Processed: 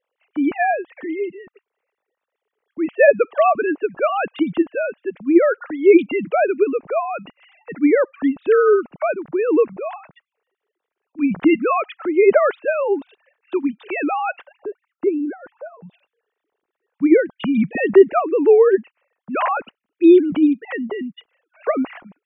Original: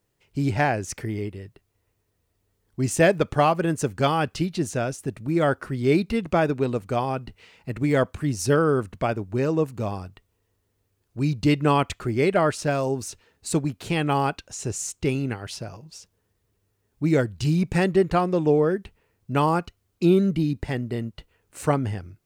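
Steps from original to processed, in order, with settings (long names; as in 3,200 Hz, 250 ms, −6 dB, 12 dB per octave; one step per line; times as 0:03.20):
three sine waves on the formant tracks
0:14.57–0:15.82: low-pass filter 1,400 Hz 24 dB per octave
level +5.5 dB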